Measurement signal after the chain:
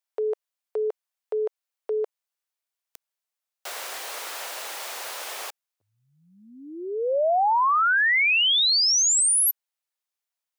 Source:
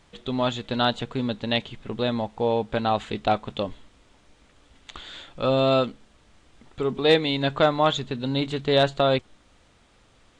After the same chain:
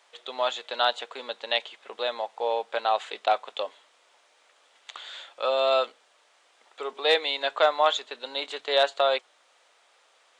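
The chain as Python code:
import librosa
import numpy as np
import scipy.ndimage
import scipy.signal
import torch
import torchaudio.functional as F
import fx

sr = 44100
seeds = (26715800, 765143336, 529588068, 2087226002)

y = scipy.signal.sosfilt(scipy.signal.butter(4, 530.0, 'highpass', fs=sr, output='sos'), x)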